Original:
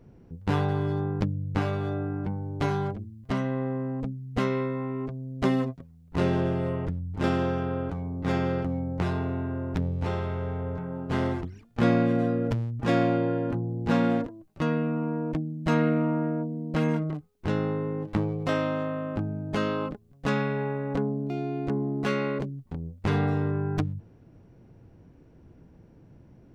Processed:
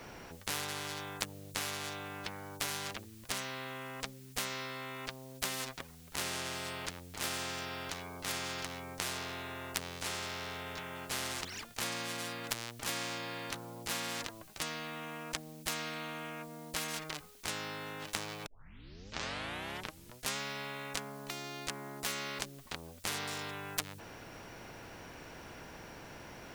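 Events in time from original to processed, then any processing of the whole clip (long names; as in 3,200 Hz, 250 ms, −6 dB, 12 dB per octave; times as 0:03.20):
0:18.46: tape start 1.91 s
whole clip: tilt shelving filter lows −9 dB, about 800 Hz; every bin compressed towards the loudest bin 4 to 1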